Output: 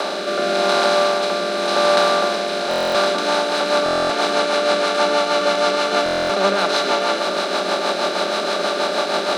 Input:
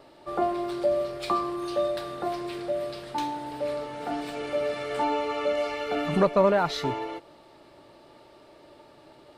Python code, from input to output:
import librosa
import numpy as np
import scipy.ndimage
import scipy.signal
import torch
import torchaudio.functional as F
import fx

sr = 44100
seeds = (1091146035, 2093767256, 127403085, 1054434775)

p1 = fx.bin_compress(x, sr, power=0.2)
p2 = scipy.signal.sosfilt(scipy.signal.butter(16, 180.0, 'highpass', fs=sr, output='sos'), p1)
p3 = fx.tilt_eq(p2, sr, slope=3.5)
p4 = fx.notch(p3, sr, hz=960.0, q=10.0)
p5 = fx.rider(p4, sr, range_db=10, speed_s=0.5)
p6 = p4 + (p5 * 10.0 ** (-2.5 / 20.0))
p7 = fx.rotary_switch(p6, sr, hz=0.9, then_hz=6.3, switch_at_s=2.82)
p8 = np.sign(p7) * np.maximum(np.abs(p7) - 10.0 ** (-42.5 / 20.0), 0.0)
p9 = fx.air_absorb(p8, sr, metres=52.0)
p10 = p9 + fx.echo_single(p9, sr, ms=102, db=-10.0, dry=0)
p11 = fx.buffer_glitch(p10, sr, at_s=(2.69, 3.84, 6.04), block=1024, repeats=10)
y = p11 * 10.0 ** (-1.0 / 20.0)